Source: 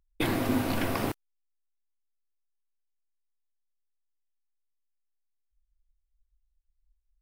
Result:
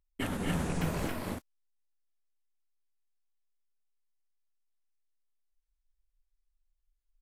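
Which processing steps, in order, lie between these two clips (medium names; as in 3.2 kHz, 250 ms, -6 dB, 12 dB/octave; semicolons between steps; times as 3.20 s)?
sawtooth pitch modulation -10.5 st, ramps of 811 ms; loudspeakers at several distances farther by 81 m -6 dB, 94 m -2 dB; trim -5.5 dB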